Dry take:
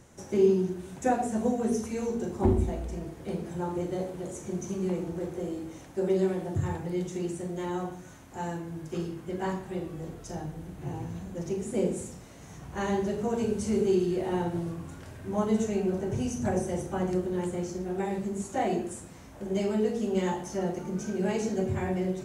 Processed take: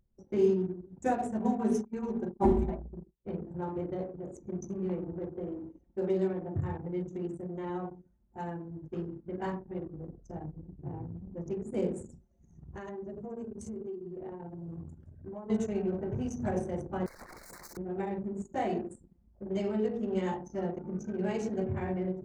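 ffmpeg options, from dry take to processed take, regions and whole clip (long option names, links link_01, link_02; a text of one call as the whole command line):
ffmpeg -i in.wav -filter_complex "[0:a]asettb=1/sr,asplit=3[link_01][link_02][link_03];[link_01]atrim=end=1.394[link_04];[link_02]atrim=start=1.39:end=3.25,asetpts=PTS-STARTPTS,afade=type=in:duration=0.004:curve=qsin,afade=type=out:start_time=1.856:duration=0.004:curve=qsin,agate=range=-33dB:threshold=-30dB:ratio=3:release=100:detection=peak,equalizer=frequency=870:width=3:gain=6.5,aecho=1:1:5.1:0.74,atrim=end_sample=82026[link_05];[link_03]atrim=start=3.246[link_06];[link_04][link_05]acrossfade=duration=0.004:curve1=hsin:curve2=qsin[link_07];[link_07][link_06]acrossfade=duration=0.004:curve1=qsin:curve2=hsin,asettb=1/sr,asplit=3[link_08][link_09][link_10];[link_08]atrim=end=12.094[link_11];[link_09]atrim=start=12.09:end=15.5,asetpts=PTS-STARTPTS,afade=type=in:duration=0.004:curve=qsin,afade=type=out:start_time=3.406:duration=0.004:curve=qsin,highshelf=frequency=5300:gain=9.5,acompressor=threshold=-33dB:ratio=16:attack=3.2:release=140:knee=1:detection=peak,asplit=2[link_12][link_13];[link_13]adelay=13,volume=-8dB[link_14];[link_12][link_14]amix=inputs=2:normalize=0,atrim=end_sample=150381[link_15];[link_10]atrim=start=15.496[link_16];[link_11][link_15]acrossfade=duration=0.004:curve1=hsin:curve2=qsin[link_17];[link_17][link_16]acrossfade=duration=0.004:curve1=qsin:curve2=hsin,asettb=1/sr,asplit=3[link_18][link_19][link_20];[link_18]atrim=end=17.064[link_21];[link_19]atrim=start=17.06:end=17.77,asetpts=PTS-STARTPTS,afade=type=in:duration=0.004:curve=qsin,afade=type=out:start_time=0.706:duration=0.004:curve=qsin,highshelf=frequency=2200:gain=7,aeval=exprs='(mod(47.3*val(0)+1,2)-1)/47.3':channel_layout=same,asuperstop=centerf=3000:order=12:qfactor=1.8[link_22];[link_20]atrim=start=17.766[link_23];[link_21][link_22]acrossfade=duration=0.004:curve1=hsin:curve2=qsin[link_24];[link_24][link_23]acrossfade=duration=0.004:curve1=qsin:curve2=hsin,anlmdn=2.51,adynamicequalizer=threshold=0.00355:dfrequency=3000:dqfactor=0.7:tfrequency=3000:tqfactor=0.7:attack=5:release=100:ratio=0.375:range=2:mode=cutabove:tftype=highshelf,volume=-3.5dB" out.wav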